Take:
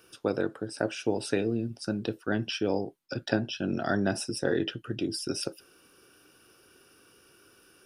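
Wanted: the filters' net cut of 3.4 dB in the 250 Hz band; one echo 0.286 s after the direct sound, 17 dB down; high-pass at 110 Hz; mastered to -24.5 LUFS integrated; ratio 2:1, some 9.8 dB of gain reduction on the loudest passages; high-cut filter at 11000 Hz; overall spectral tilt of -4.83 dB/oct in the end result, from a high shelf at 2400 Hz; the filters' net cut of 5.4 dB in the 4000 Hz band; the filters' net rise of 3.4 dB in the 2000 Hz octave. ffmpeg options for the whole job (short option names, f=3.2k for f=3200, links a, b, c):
-af "highpass=110,lowpass=11k,equalizer=f=250:t=o:g=-4.5,equalizer=f=2k:t=o:g=9,highshelf=f=2.4k:g=-6,equalizer=f=4k:t=o:g=-5.5,acompressor=threshold=-43dB:ratio=2,aecho=1:1:286:0.141,volume=17dB"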